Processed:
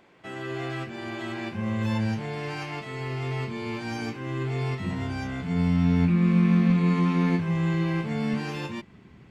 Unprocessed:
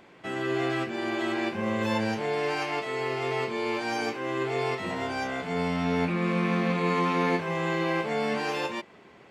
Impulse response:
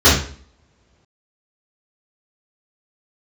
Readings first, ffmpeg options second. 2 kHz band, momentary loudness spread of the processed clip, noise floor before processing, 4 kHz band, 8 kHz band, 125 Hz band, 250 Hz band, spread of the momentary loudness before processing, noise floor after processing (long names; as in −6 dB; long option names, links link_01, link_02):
−4.5 dB, 13 LU, −53 dBFS, −4.0 dB, can't be measured, +9.0 dB, +5.0 dB, 5 LU, −52 dBFS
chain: -af "asubboost=boost=11.5:cutoff=160,volume=-4dB"